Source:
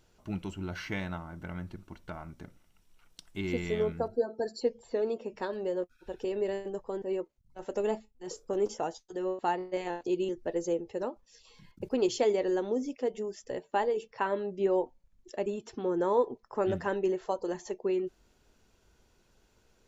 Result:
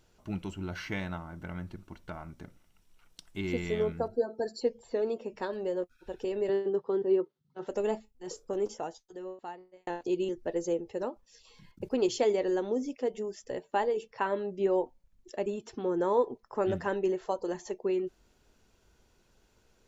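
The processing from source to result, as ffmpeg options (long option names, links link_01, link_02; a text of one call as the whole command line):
ffmpeg -i in.wav -filter_complex "[0:a]asettb=1/sr,asplit=3[link_01][link_02][link_03];[link_01]atrim=end=6.494[link_04];[link_02]atrim=start=6.49:end=7.67,asetpts=PTS-STARTPTS,afade=type=in:duration=0.004:curve=qsin,afade=type=out:start_time=1.176:duration=0.004:curve=qsin,highpass=frequency=140:width=0.5412,highpass=frequency=140:width=1.3066,equalizer=frequency=150:width_type=q:width=4:gain=8,equalizer=frequency=400:width_type=q:width=4:gain=9,equalizer=frequency=620:width_type=q:width=4:gain=-5,equalizer=frequency=1300:width_type=q:width=4:gain=5,equalizer=frequency=2400:width_type=q:width=4:gain=-7,equalizer=frequency=3500:width_type=q:width=4:gain=4,lowpass=frequency=5000:width=0.5412,lowpass=frequency=5000:width=1.3066[link_05];[link_03]atrim=start=7.666[link_06];[link_04][link_05]acrossfade=duration=0.004:curve1=hsin:curve2=qsin[link_07];[link_07][link_06]acrossfade=duration=0.004:curve1=qsin:curve2=hsin,asplit=2[link_08][link_09];[link_08]atrim=end=9.87,asetpts=PTS-STARTPTS,afade=type=out:start_time=8.28:duration=1.59[link_10];[link_09]atrim=start=9.87,asetpts=PTS-STARTPTS,afade=type=in:duration=0.004:curve=hsin[link_11];[link_10][link_11]concat=n=2:v=0:a=1" out.wav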